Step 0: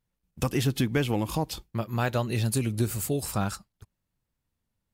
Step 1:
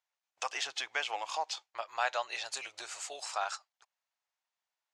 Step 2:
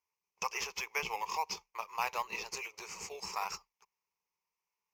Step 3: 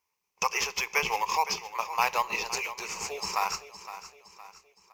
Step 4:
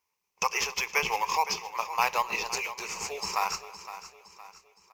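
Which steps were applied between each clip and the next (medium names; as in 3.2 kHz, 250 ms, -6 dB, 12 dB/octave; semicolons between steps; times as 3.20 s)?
elliptic band-pass 710–6800 Hz, stop band 50 dB
in parallel at -8 dB: decimation with a swept rate 12×, swing 60% 1 Hz; on the sum: rippled EQ curve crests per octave 0.8, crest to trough 15 dB; trim -5 dB
feedback delay 514 ms, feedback 44%, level -13.5 dB; on a send at -18.5 dB: reverberation, pre-delay 4 ms; on the sum: trim +8.5 dB
delay 269 ms -20.5 dB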